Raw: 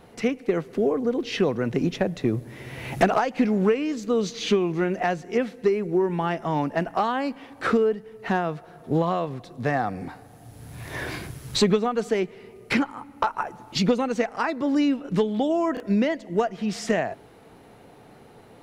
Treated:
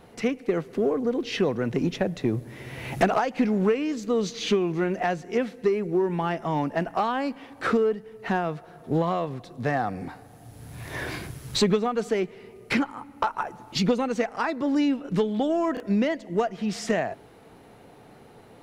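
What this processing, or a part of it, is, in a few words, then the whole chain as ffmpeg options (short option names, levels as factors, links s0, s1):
parallel distortion: -filter_complex "[0:a]asplit=2[s0][s1];[s1]asoftclip=type=hard:threshold=0.0668,volume=0.237[s2];[s0][s2]amix=inputs=2:normalize=0,volume=0.75"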